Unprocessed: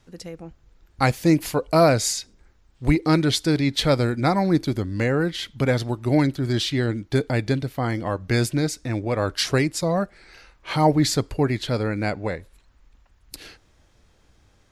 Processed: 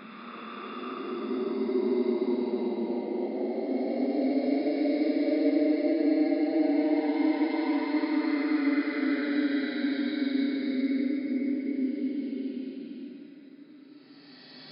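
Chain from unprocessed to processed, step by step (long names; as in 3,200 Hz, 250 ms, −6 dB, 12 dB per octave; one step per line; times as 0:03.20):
stylus tracing distortion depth 0.28 ms
dynamic equaliser 930 Hz, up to −7 dB, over −37 dBFS, Q 1.7
downward compressor 2.5 to 1, threshold −24 dBFS, peak gain reduction 8 dB
brick-wall band-pass 170–5,200 Hz
extreme stretch with random phases 46×, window 0.05 s, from 0:06.03
level −1.5 dB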